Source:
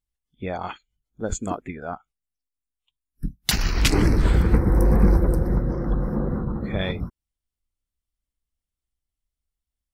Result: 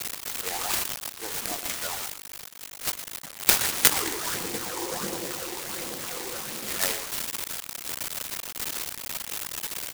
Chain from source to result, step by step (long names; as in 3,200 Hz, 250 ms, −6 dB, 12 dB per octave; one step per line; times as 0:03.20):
spike at every zero crossing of −18.5 dBFS
high-pass filter 88 Hz 24 dB per octave
bit-depth reduction 6 bits, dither none
bass and treble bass −8 dB, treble −8 dB
all-pass phaser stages 8, 1.4 Hz, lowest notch 170–1,700 Hz
meter weighting curve ITU-R 468
far-end echo of a speakerphone 120 ms, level −9 dB
short delay modulated by noise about 5,900 Hz, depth 0.11 ms
level +1.5 dB